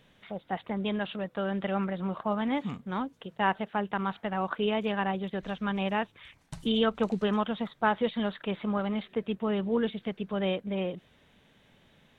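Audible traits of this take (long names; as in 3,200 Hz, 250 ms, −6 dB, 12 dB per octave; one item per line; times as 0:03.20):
background noise floor −63 dBFS
spectral slope −4.5 dB per octave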